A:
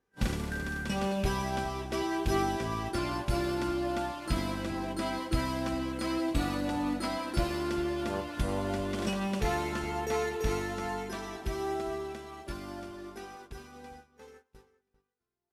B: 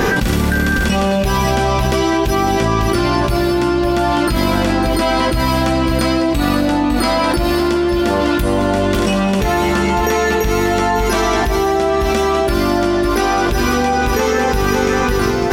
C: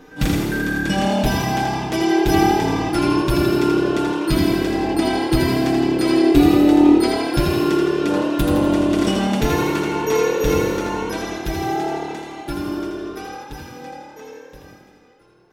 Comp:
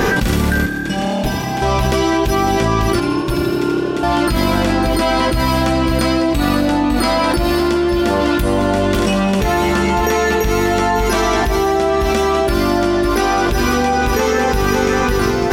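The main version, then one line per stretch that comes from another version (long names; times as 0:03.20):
B
0:00.66–0:01.62: punch in from C
0:03.00–0:04.03: punch in from C
not used: A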